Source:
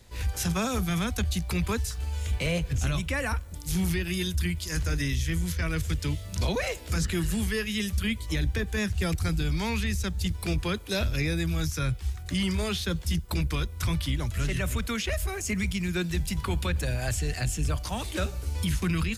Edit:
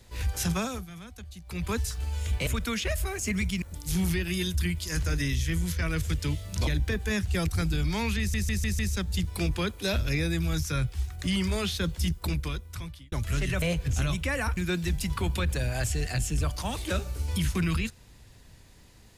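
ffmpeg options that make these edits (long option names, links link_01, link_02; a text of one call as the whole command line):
ffmpeg -i in.wav -filter_complex "[0:a]asplit=13[link_01][link_02][link_03][link_04][link_05][link_06][link_07][link_08][link_09][link_10][link_11][link_12][link_13];[link_01]atrim=end=0.87,asetpts=PTS-STARTPTS,afade=type=out:start_time=0.53:duration=0.34:silence=0.158489[link_14];[link_02]atrim=start=0.87:end=1.44,asetpts=PTS-STARTPTS,volume=-16dB[link_15];[link_03]atrim=start=1.44:end=2.472,asetpts=PTS-STARTPTS,afade=type=in:duration=0.34:silence=0.158489[link_16];[link_04]atrim=start=14.688:end=15.842[link_17];[link_05]atrim=start=3.418:end=6.472[link_18];[link_06]atrim=start=8.338:end=10.012[link_19];[link_07]atrim=start=9.858:end=10.012[link_20];[link_08]atrim=start=9.858:end=10.012[link_21];[link_09]atrim=start=9.858:end=10.012[link_22];[link_10]atrim=start=9.858:end=14.19,asetpts=PTS-STARTPTS,afade=type=out:start_time=3.362:duration=0.97[link_23];[link_11]atrim=start=14.19:end=14.692,asetpts=PTS-STARTPTS,afade=type=in:duration=0.004:curve=hsin[link_24];[link_12]atrim=start=2.468:end=3.422[link_25];[link_13]atrim=start=15.838[link_26];[link_14][link_15][link_16]concat=n=3:v=0:a=1[link_27];[link_27][link_17]acrossfade=duration=0.004:curve1=hsin:curve2=hsin[link_28];[link_28][link_18]acrossfade=duration=0.004:curve1=hsin:curve2=hsin[link_29];[link_29][link_19]acrossfade=duration=0.004:curve1=hsin:curve2=hsin[link_30];[link_30][link_20]acrossfade=duration=0.004:curve1=hsin:curve2=hsin[link_31];[link_31][link_21]acrossfade=duration=0.004:curve1=hsin:curve2=hsin[link_32];[link_32][link_22]acrossfade=duration=0.004:curve1=hsin:curve2=hsin[link_33];[link_23][link_24]concat=n=2:v=0:a=1[link_34];[link_33][link_34]acrossfade=duration=0.004:curve1=hsin:curve2=hsin[link_35];[link_35][link_25]acrossfade=duration=0.004:curve1=hsin:curve2=hsin[link_36];[link_36][link_26]acrossfade=duration=0.004:curve1=hsin:curve2=hsin" out.wav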